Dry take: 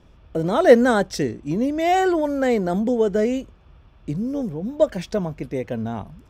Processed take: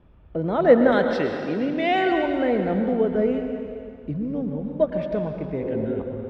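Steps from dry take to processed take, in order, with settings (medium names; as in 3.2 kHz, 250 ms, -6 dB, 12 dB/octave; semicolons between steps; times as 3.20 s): 0.92–2.12 s: frequency weighting D; 5.63–5.97 s: spectral replace 240–1300 Hz before; distance through air 410 m; reverberation RT60 2.4 s, pre-delay 98 ms, DRR 4 dB; trim -2 dB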